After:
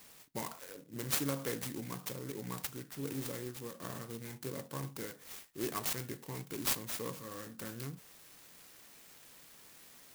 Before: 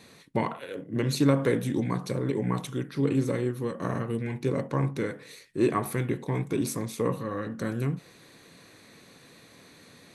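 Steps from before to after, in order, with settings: pre-emphasis filter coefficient 0.9; sampling jitter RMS 0.094 ms; trim +4.5 dB

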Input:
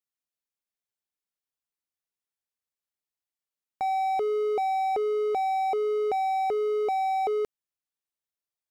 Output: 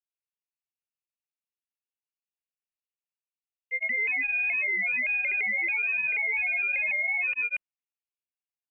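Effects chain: level-controlled noise filter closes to 480 Hz, open at -26.5 dBFS; granulator 100 ms, grains 20 per s, spray 132 ms, pitch spread up and down by 3 st; frequency inversion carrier 2.9 kHz

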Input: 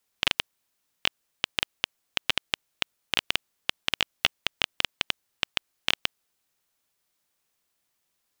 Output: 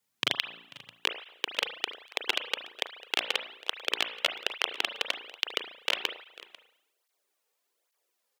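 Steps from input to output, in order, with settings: on a send at -7 dB: reverberation RT60 0.75 s, pre-delay 35 ms; on the sum: high-pass sweep 120 Hz -> 440 Hz, 0.43–0.96 s; delay 493 ms -20 dB; cancelling through-zero flanger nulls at 1.2 Hz, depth 3.2 ms

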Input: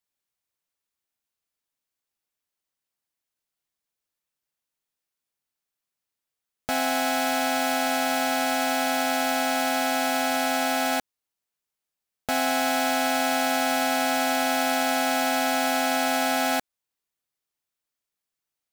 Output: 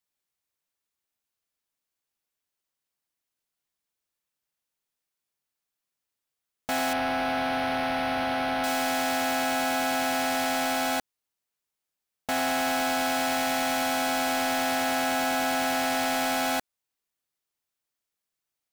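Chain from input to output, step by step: hard clipper -23.5 dBFS, distortion -11 dB; 6.93–8.64 s: decimation joined by straight lines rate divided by 6×

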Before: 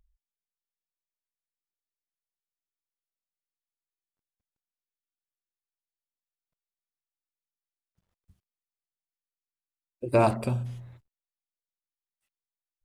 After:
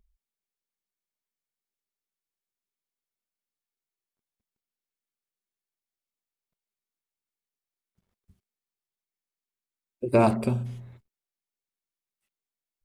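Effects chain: small resonant body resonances 220/390/2200 Hz, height 7 dB

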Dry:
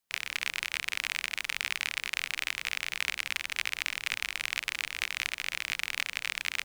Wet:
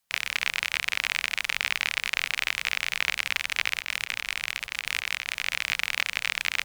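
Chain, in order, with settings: peaking EQ 330 Hz -14 dB 0.48 oct; one-sided clip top -16 dBFS; 3.77–5.46 s: compressor with a negative ratio -39 dBFS, ratio -1; trim +6 dB

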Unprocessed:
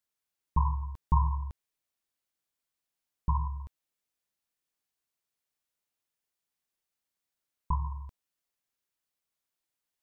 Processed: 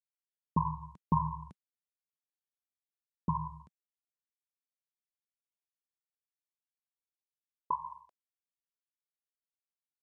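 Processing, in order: expander -35 dBFS; high-pass sweep 180 Hz -> 870 Hz, 5.82–8.69 s; MP3 40 kbps 44.1 kHz

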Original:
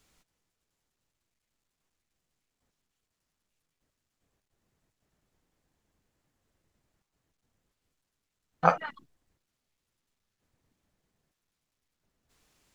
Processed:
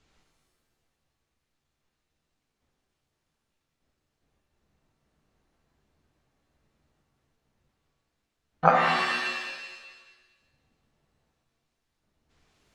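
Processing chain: distance through air 110 m; pitch-shifted reverb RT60 1.3 s, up +7 st, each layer -2 dB, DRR 2 dB; trim +1.5 dB

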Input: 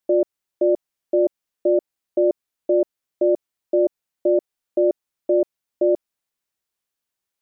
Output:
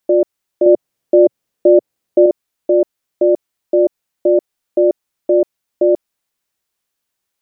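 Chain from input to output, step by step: 0.66–2.26 s: ten-band graphic EQ 125 Hz +8 dB, 250 Hz +4 dB, 500 Hz +6 dB; in parallel at +2 dB: peak limiter -13.5 dBFS, peak gain reduction 9 dB

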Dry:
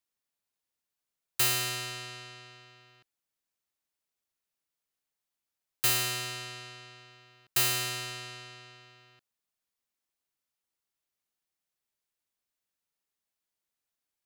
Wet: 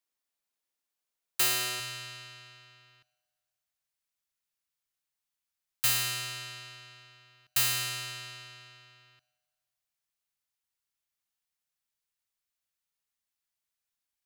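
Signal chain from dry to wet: peaking EQ 94 Hz -10 dB 2 oct, from 1.80 s 370 Hz; reverberation RT60 1.9 s, pre-delay 5 ms, DRR 19 dB

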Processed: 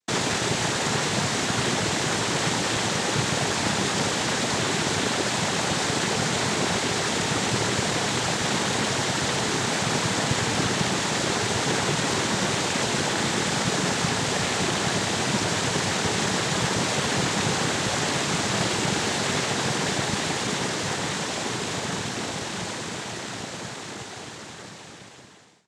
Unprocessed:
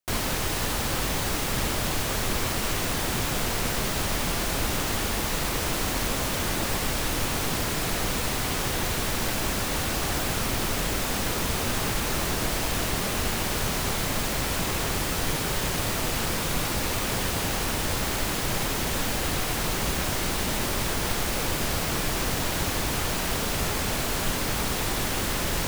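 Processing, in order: fade out at the end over 6.55 s; noise-vocoded speech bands 6; trim +5 dB

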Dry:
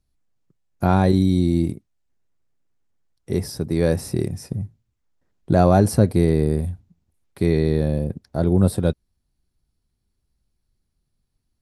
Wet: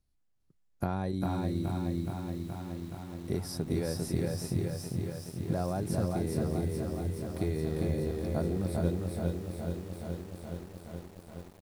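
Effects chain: compression 12:1, threshold -23 dBFS, peak gain reduction 14 dB; on a send: delay 399 ms -3.5 dB; on the sum: bit-crushed delay 422 ms, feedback 80%, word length 8-bit, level -6 dB; trim -5 dB

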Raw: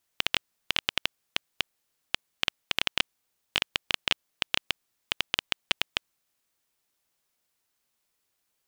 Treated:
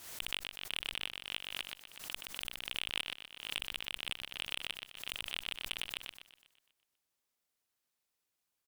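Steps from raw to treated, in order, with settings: peak limiter -12 dBFS, peak gain reduction 8 dB; saturation -20.5 dBFS, distortion -10 dB; on a send: feedback delay 123 ms, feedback 58%, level -5 dB; on the sum: Chebyshev shaper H 3 -27 dB, 5 -23 dB, 7 -18 dB, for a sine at -19 dBFS; swell ahead of each attack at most 75 dB/s

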